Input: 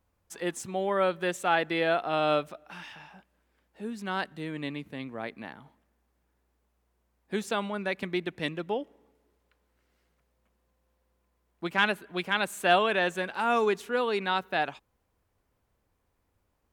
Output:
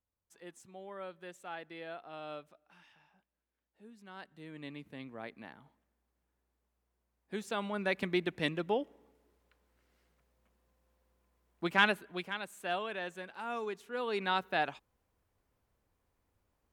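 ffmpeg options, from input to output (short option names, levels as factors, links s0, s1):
-af "volume=2.66,afade=t=in:st=4.14:d=0.79:silence=0.298538,afade=t=in:st=7.47:d=0.45:silence=0.446684,afade=t=out:st=11.78:d=0.61:silence=0.251189,afade=t=in:st=13.88:d=0.4:silence=0.334965"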